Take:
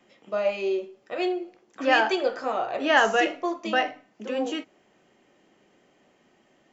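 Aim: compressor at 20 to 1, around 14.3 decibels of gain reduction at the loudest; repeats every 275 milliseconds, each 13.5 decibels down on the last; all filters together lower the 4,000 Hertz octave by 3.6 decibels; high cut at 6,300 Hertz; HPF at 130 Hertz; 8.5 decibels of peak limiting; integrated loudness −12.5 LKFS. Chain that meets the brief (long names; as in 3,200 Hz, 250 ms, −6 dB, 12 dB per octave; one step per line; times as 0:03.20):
high-pass filter 130 Hz
low-pass filter 6,300 Hz
parametric band 4,000 Hz −5.5 dB
downward compressor 20 to 1, threshold −29 dBFS
brickwall limiter −27 dBFS
repeating echo 275 ms, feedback 21%, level −13.5 dB
level +24.5 dB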